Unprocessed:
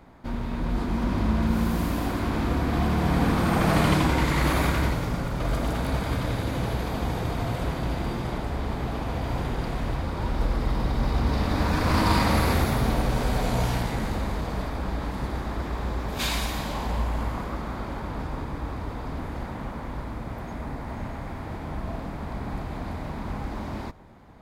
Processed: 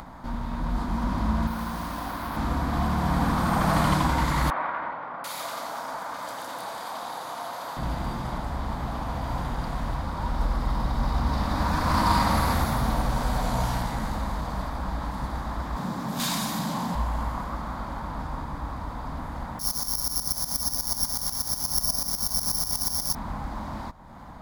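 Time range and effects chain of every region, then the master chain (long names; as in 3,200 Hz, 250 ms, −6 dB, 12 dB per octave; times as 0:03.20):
0:01.47–0:02.37: low-shelf EQ 410 Hz −8 dB + bad sample-rate conversion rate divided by 3×, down filtered, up hold
0:04.50–0:07.77: high-pass filter 570 Hz + double-tracking delay 31 ms −11.5 dB + multiband delay without the direct sound lows, highs 740 ms, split 2,300 Hz
0:15.76–0:16.95: high-pass filter 170 Hz 24 dB per octave + bass and treble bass +15 dB, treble +5 dB + gain into a clipping stage and back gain 22 dB
0:19.59–0:23.15: Butterworth low-pass 4,600 Hz + bad sample-rate conversion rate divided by 8×, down none, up zero stuff + shaped tremolo saw up 8.2 Hz, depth 80%
whole clip: graphic EQ with 15 bands 100 Hz −5 dB, 400 Hz −11 dB, 1,000 Hz +5 dB, 2,500 Hz −7 dB; upward compression, threshold −33 dBFS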